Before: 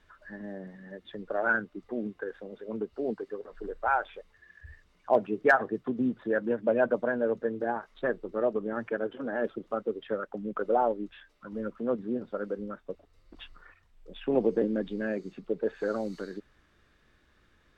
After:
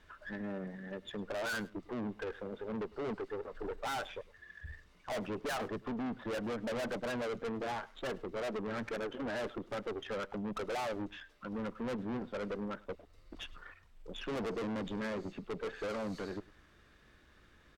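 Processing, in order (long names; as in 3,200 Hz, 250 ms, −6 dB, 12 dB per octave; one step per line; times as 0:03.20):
tube saturation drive 39 dB, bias 0.45
single-tap delay 104 ms −22 dB
level +4 dB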